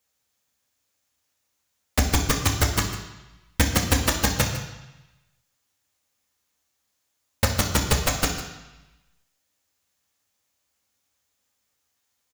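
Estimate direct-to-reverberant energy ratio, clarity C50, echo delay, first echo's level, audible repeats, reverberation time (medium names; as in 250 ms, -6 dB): 0.5 dB, 6.0 dB, 152 ms, -13.5 dB, 1, 1.0 s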